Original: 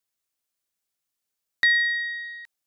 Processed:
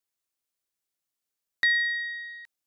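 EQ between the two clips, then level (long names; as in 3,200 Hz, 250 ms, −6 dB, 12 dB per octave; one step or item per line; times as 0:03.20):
parametric band 330 Hz +2.5 dB 0.77 octaves
mains-hum notches 60/120/180/240/300 Hz
−3.5 dB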